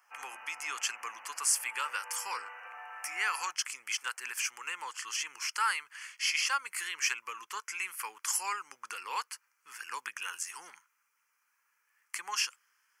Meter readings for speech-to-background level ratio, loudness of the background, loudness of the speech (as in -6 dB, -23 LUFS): 13.0 dB, -47.0 LUFS, -34.0 LUFS